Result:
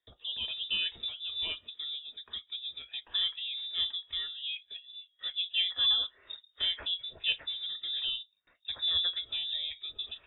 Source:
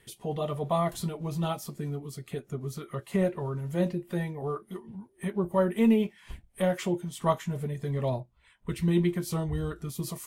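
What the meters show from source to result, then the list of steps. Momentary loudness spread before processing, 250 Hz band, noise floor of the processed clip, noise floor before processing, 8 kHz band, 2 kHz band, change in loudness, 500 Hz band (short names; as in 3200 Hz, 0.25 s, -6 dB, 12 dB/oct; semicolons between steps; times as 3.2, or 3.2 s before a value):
13 LU, under -35 dB, -72 dBFS, -63 dBFS, under -35 dB, +1.0 dB, -1.5 dB, under -25 dB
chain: gate with hold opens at -51 dBFS; inverted band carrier 3700 Hz; resonant low shelf 100 Hz +6.5 dB, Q 1.5; gain -5.5 dB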